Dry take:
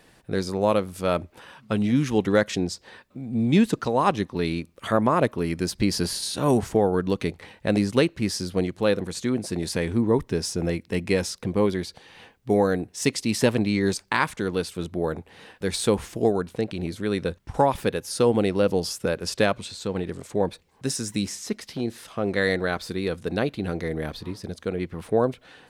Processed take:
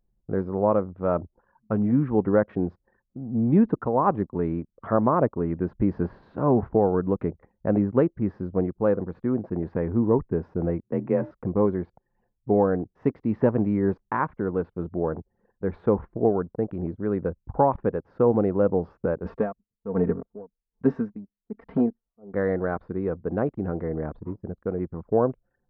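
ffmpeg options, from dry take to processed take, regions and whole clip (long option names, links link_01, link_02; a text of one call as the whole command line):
ffmpeg -i in.wav -filter_complex "[0:a]asettb=1/sr,asplit=3[link_01][link_02][link_03];[link_01]atrim=end=10.834[link_04];[link_02]atrim=start=10.83:end=11.31,asetpts=PTS-STARTPTS,afade=type=in:duration=0.004:curve=qsin,afade=type=out:start_time=0.476:duration=0.004:curve=qsin,equalizer=frequency=4700:width_type=o:width=0.44:gain=-7,bandreject=frequency=280.5:width_type=h:width=4,bandreject=frequency=561:width_type=h:width=4,bandreject=frequency=841.5:width_type=h:width=4,bandreject=frequency=1122:width_type=h:width=4,bandreject=frequency=1402.5:width_type=h:width=4,bandreject=frequency=1683:width_type=h:width=4,bandreject=frequency=1963.5:width_type=h:width=4,bandreject=frequency=2244:width_type=h:width=4,bandreject=frequency=2524.5:width_type=h:width=4,bandreject=frequency=2805:width_type=h:width=4,bandreject=frequency=3085.5:width_type=h:width=4,bandreject=frequency=3366:width_type=h:width=4,bandreject=frequency=3646.5:width_type=h:width=4,bandreject=frequency=3927:width_type=h:width=4,bandreject=frequency=4207.5:width_type=h:width=4,bandreject=frequency=4488:width_type=h:width=4,bandreject=frequency=4768.5:width_type=h:width=4,bandreject=frequency=5049:width_type=h:width=4,bandreject=frequency=5329.5:width_type=h:width=4,bandreject=frequency=5610:width_type=h:width=4,bandreject=frequency=5890.5:width_type=h:width=4,bandreject=frequency=6171:width_type=h:width=4,bandreject=frequency=6451.5:width_type=h:width=4,bandreject=frequency=6732:width_type=h:width=4,bandreject=frequency=7012.5:width_type=h:width=4,bandreject=frequency=7293:width_type=h:width=4,bandreject=frequency=7573.5:width_type=h:width=4,bandreject=frequency=7854:width_type=h:width=4,bandreject=frequency=8134.5:width_type=h:width=4,bandreject=frequency=8415:width_type=h:width=4,afreqshift=35[link_05];[link_03]atrim=start=11.306[link_06];[link_04][link_05]acrossfade=duration=0.004:curve1=hsin:curve2=qsin[link_07];[link_07][link_06]acrossfade=duration=0.004:curve1=qsin:curve2=hsin,asettb=1/sr,asplit=3[link_08][link_09][link_10];[link_08]atrim=end=19.254[link_11];[link_09]atrim=start=19.25:end=22.34,asetpts=PTS-STARTPTS,afade=type=in:duration=0.004:curve=qsin,afade=type=out:start_time=3.086:duration=0.004:curve=qsin,aecho=1:1:4.4:0.67,atrim=end_sample=136269,acontrast=81,aeval=exprs='val(0)*pow(10,-29*(0.5-0.5*cos(2*PI*1.2*n/s))/20)':channel_layout=same[link_12];[link_10]atrim=start=22.336[link_13];[link_11][link_12]acrossfade=duration=0.004:curve1=hsin:curve2=qsin[link_14];[link_14][link_13]acrossfade=duration=0.004:curve1=qsin:curve2=hsin,anlmdn=1,lowpass=frequency=1300:width=0.5412,lowpass=frequency=1300:width=1.3066" out.wav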